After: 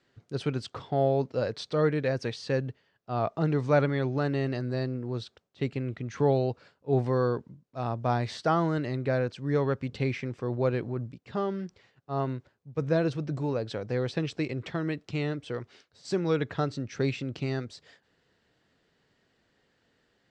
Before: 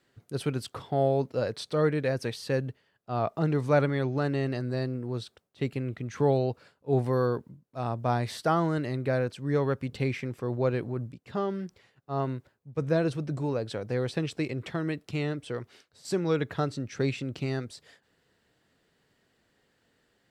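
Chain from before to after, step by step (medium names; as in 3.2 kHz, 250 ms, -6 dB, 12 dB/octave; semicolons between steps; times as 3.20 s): low-pass 6.9 kHz 24 dB/octave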